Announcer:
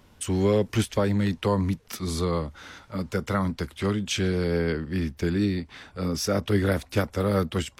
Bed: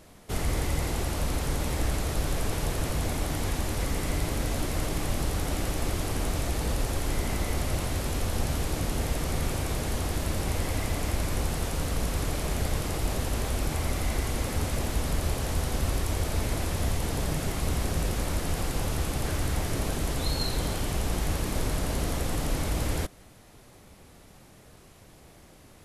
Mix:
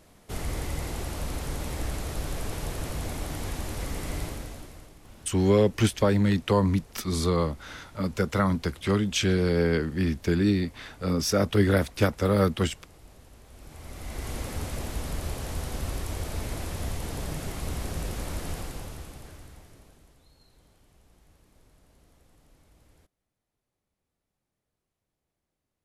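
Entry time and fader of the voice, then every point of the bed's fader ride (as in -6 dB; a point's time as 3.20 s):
5.05 s, +1.5 dB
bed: 4.23 s -4 dB
4.98 s -23 dB
13.45 s -23 dB
14.30 s -4.5 dB
18.51 s -4.5 dB
20.27 s -32 dB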